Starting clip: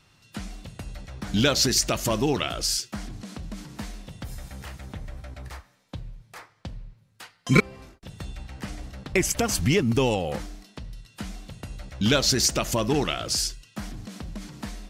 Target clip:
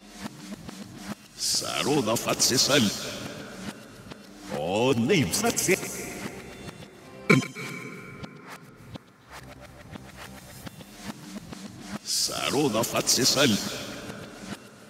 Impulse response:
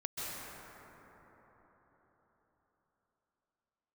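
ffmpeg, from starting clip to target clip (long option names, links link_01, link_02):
-filter_complex "[0:a]areverse,highpass=150,asplit=2[link_01][link_02];[link_02]tiltshelf=frequency=970:gain=-3[link_03];[1:a]atrim=start_sample=2205,highshelf=frequency=7300:gain=10,adelay=127[link_04];[link_03][link_04]afir=irnorm=-1:irlink=0,volume=-15dB[link_05];[link_01][link_05]amix=inputs=2:normalize=0"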